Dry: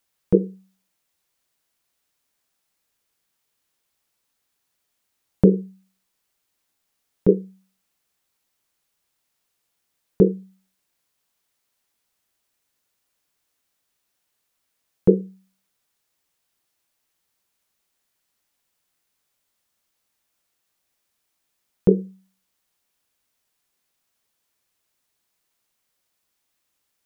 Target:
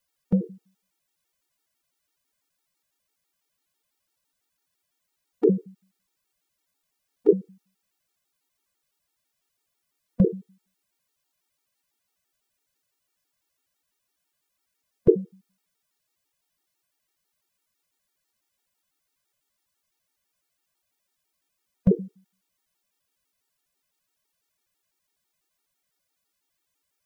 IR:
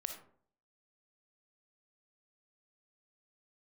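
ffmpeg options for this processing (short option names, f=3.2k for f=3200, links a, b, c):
-af "afftfilt=real='re*gt(sin(2*PI*6*pts/sr)*(1-2*mod(floor(b*sr/1024/240),2)),0)':imag='im*gt(sin(2*PI*6*pts/sr)*(1-2*mod(floor(b*sr/1024/240),2)),0)':win_size=1024:overlap=0.75"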